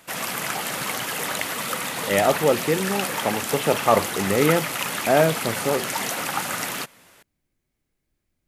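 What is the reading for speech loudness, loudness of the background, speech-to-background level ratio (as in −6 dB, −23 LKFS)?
−23.0 LKFS, −26.5 LKFS, 3.5 dB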